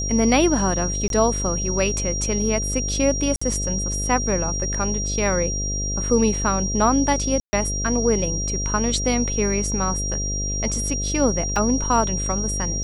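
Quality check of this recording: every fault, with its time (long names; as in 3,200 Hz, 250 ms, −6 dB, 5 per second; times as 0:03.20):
mains buzz 50 Hz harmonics 13 −27 dBFS
whistle 5,700 Hz −26 dBFS
0:01.08–0:01.10: drop-out 22 ms
0:03.36–0:03.42: drop-out 55 ms
0:07.40–0:07.53: drop-out 130 ms
0:11.56: drop-out 2.4 ms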